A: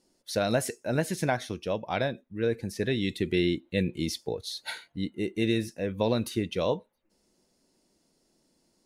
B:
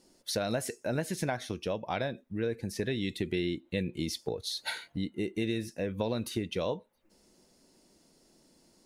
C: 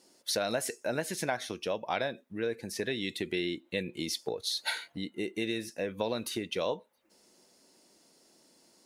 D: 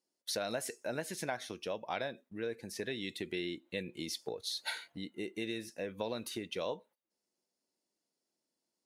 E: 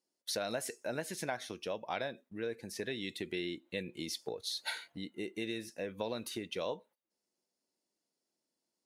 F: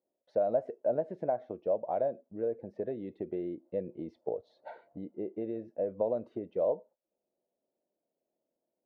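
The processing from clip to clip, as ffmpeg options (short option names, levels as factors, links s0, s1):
-af "acompressor=threshold=0.01:ratio=2.5,volume=2"
-af "highpass=f=450:p=1,volume=1.41"
-af "agate=range=0.112:threshold=0.00178:ratio=16:detection=peak,volume=0.531"
-af anull
-af "lowpass=f=620:t=q:w=3.6"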